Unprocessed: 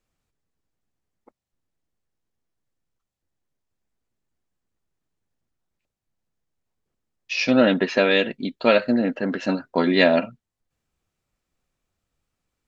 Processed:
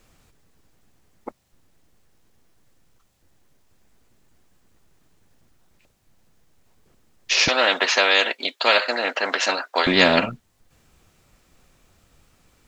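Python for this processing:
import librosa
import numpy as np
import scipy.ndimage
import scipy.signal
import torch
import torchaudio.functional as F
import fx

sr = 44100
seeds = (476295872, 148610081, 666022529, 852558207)

y = fx.highpass(x, sr, hz=600.0, slope=24, at=(7.48, 9.87))
y = fx.spectral_comp(y, sr, ratio=2.0)
y = y * 10.0 ** (2.5 / 20.0)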